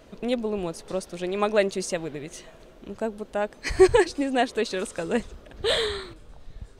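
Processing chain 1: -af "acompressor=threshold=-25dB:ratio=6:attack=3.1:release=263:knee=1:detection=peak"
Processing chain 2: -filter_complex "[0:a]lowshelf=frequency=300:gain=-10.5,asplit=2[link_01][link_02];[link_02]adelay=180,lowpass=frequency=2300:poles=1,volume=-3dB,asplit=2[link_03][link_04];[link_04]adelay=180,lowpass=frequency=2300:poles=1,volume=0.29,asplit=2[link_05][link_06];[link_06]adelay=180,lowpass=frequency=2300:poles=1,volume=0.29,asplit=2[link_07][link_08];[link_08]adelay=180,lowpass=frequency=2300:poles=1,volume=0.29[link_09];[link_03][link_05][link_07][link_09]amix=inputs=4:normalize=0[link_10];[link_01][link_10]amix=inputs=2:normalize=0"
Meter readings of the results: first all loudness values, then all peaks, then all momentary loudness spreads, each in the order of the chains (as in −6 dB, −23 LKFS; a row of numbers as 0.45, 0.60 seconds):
−32.5, −27.0 LKFS; −18.0, −6.5 dBFS; 13, 15 LU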